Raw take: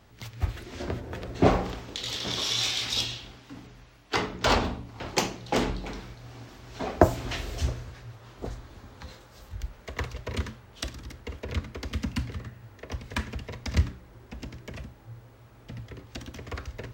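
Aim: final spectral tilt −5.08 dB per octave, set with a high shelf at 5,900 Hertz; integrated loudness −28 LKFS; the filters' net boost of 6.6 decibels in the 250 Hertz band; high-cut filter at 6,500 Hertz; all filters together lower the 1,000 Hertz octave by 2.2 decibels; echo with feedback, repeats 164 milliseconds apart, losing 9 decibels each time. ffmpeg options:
ffmpeg -i in.wav -af "lowpass=6500,equalizer=frequency=250:width_type=o:gain=8.5,equalizer=frequency=1000:width_type=o:gain=-3.5,highshelf=frequency=5900:gain=-6.5,aecho=1:1:164|328|492|656:0.355|0.124|0.0435|0.0152,volume=1dB" out.wav

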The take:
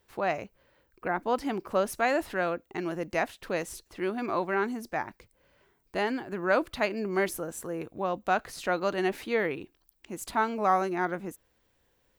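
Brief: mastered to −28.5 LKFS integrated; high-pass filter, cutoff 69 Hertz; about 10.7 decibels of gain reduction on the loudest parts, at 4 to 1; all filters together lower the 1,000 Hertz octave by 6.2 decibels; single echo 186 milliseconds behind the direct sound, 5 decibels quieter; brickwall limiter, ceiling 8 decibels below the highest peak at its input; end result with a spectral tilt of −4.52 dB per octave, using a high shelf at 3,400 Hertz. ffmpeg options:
ffmpeg -i in.wav -af "highpass=69,equalizer=frequency=1000:width_type=o:gain=-9,highshelf=frequency=3400:gain=-3.5,acompressor=threshold=-37dB:ratio=4,alimiter=level_in=9.5dB:limit=-24dB:level=0:latency=1,volume=-9.5dB,aecho=1:1:186:0.562,volume=14.5dB" out.wav

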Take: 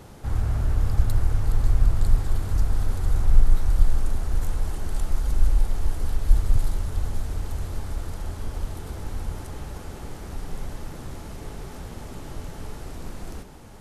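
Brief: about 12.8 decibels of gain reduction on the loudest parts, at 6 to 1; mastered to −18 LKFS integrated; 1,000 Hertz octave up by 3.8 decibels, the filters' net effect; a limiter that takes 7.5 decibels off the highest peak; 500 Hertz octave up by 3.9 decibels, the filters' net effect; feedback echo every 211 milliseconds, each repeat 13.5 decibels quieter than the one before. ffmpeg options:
ffmpeg -i in.wav -af "equalizer=frequency=500:width_type=o:gain=4,equalizer=frequency=1000:width_type=o:gain=3.5,acompressor=threshold=-22dB:ratio=6,alimiter=limit=-22.5dB:level=0:latency=1,aecho=1:1:211|422:0.211|0.0444,volume=18.5dB" out.wav

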